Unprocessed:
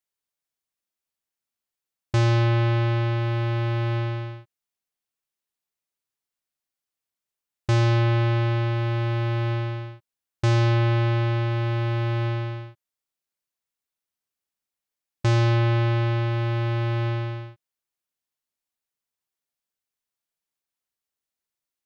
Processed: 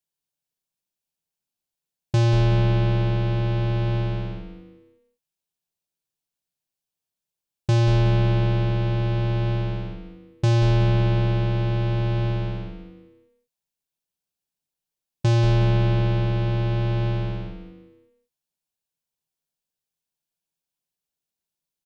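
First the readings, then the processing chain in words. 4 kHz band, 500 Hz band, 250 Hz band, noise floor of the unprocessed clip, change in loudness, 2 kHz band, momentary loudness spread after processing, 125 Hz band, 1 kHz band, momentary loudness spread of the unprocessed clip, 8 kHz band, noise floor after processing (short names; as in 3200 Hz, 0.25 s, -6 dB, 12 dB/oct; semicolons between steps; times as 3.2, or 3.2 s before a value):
0.0 dB, +0.5 dB, +2.0 dB, under -85 dBFS, +1.5 dB, -3.5 dB, 12 LU, +1.5 dB, -2.0 dB, 11 LU, n/a, under -85 dBFS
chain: thirty-one-band EQ 160 Hz +11 dB, 1250 Hz -9 dB, 2000 Hz -8 dB; on a send: frequency-shifting echo 0.182 s, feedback 38%, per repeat -150 Hz, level -8 dB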